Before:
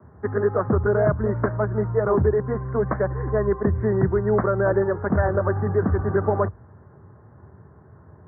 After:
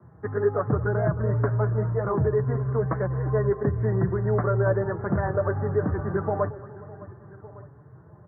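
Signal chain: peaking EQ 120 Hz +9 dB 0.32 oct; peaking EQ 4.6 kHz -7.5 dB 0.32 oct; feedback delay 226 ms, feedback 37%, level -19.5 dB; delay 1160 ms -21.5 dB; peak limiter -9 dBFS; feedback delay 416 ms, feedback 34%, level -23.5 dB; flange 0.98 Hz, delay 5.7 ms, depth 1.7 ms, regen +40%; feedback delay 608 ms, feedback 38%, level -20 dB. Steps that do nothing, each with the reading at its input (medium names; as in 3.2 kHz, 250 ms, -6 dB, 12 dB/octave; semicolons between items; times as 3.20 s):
peaking EQ 4.6 kHz: input has nothing above 1.4 kHz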